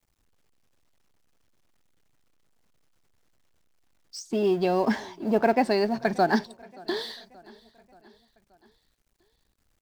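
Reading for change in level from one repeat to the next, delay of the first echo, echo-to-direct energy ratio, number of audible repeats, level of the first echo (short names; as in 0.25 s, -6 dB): -5.0 dB, 0.578 s, -22.5 dB, 3, -24.0 dB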